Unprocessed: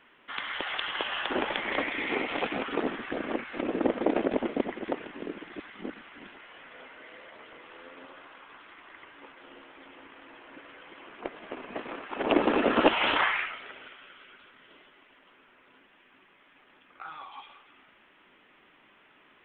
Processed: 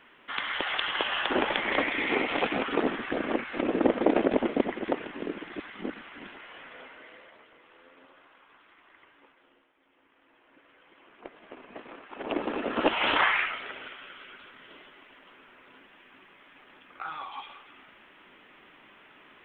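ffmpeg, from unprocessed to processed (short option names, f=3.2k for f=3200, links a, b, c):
-af "volume=27.5dB,afade=t=out:st=6.58:d=0.91:silence=0.281838,afade=t=out:st=9.08:d=0.66:silence=0.266073,afade=t=in:st=9.74:d=1.76:silence=0.237137,afade=t=in:st=12.7:d=0.86:silence=0.251189"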